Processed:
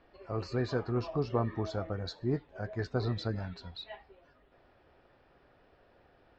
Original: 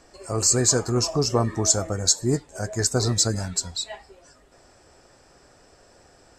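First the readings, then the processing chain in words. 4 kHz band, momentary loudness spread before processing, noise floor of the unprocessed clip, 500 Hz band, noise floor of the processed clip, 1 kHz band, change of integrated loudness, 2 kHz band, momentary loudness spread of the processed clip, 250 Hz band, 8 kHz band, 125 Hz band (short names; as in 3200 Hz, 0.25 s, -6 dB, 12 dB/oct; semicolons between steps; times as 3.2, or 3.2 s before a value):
-19.0 dB, 12 LU, -56 dBFS, -8.5 dB, -65 dBFS, -8.5 dB, -13.0 dB, -8.5 dB, 12 LU, -8.5 dB, under -40 dB, -8.5 dB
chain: steep low-pass 3700 Hz 36 dB/oct; gain -8.5 dB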